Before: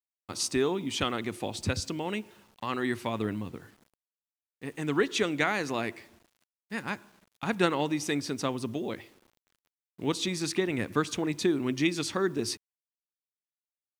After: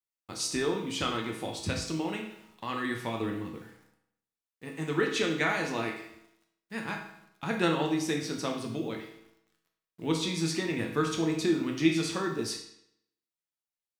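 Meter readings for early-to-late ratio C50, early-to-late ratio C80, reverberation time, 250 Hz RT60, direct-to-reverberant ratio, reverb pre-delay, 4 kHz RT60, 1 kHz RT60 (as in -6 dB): 5.5 dB, 8.5 dB, 0.75 s, 0.75 s, 0.5 dB, 6 ms, 0.65 s, 0.75 s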